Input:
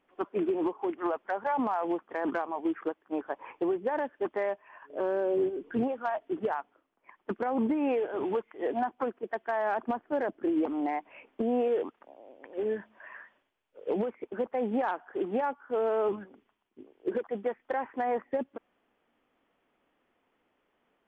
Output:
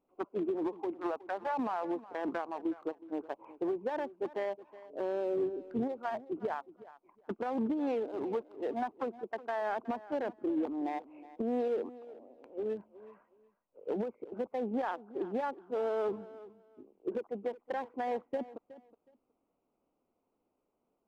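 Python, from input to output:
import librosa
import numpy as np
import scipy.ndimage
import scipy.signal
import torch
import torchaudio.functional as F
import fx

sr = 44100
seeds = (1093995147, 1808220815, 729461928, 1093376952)

y = fx.wiener(x, sr, points=25)
y = fx.echo_feedback(y, sr, ms=368, feedback_pct=20, wet_db=-17.5)
y = y * librosa.db_to_amplitude(-4.0)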